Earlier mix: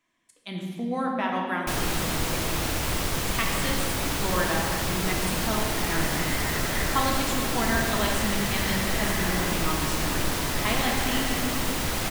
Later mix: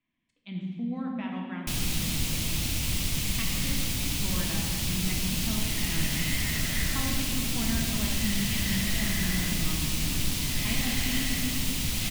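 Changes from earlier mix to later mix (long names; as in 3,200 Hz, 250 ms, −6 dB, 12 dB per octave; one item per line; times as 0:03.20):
speech: add low-pass filter 2,000 Hz 12 dB per octave
second sound +6.0 dB
master: add flat-topped bell 780 Hz −14 dB 2.7 octaves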